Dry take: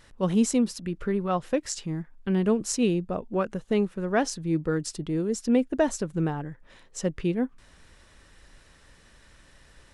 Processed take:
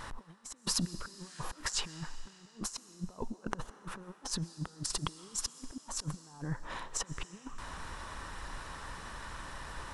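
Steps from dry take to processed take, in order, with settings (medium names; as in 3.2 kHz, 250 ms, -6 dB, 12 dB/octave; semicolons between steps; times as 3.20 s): FFT filter 570 Hz 0 dB, 1 kHz +12 dB, 2 kHz -1 dB; compressor with a negative ratio -39 dBFS, ratio -0.5; on a send at -14 dB: high-pass 310 Hz 12 dB/octave + reverberation RT60 3.1 s, pre-delay 85 ms; on the sum: spectral replace 1.15–1.47 s, 1.3–9.8 kHz both; trim -2 dB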